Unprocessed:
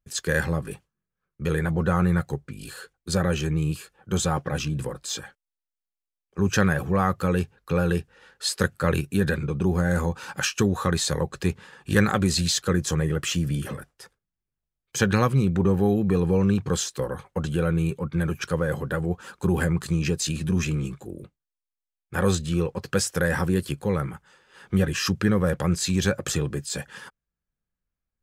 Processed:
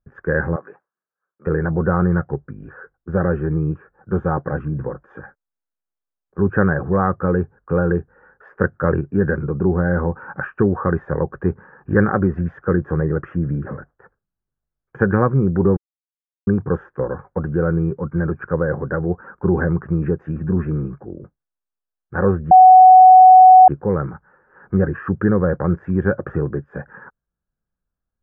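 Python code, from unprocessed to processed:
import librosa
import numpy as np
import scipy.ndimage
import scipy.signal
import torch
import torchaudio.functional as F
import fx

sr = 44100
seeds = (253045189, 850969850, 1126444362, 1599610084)

y = fx.highpass(x, sr, hz=620.0, slope=12, at=(0.56, 1.47))
y = fx.edit(y, sr, fx.silence(start_s=15.77, length_s=0.7),
    fx.bleep(start_s=22.51, length_s=1.17, hz=745.0, db=-8.0), tone=tone)
y = scipy.signal.sosfilt(scipy.signal.ellip(4, 1.0, 60, 1600.0, 'lowpass', fs=sr, output='sos'), y)
y = fx.dynamic_eq(y, sr, hz=370.0, q=1.9, threshold_db=-35.0, ratio=4.0, max_db=4)
y = y * librosa.db_to_amplitude(4.5)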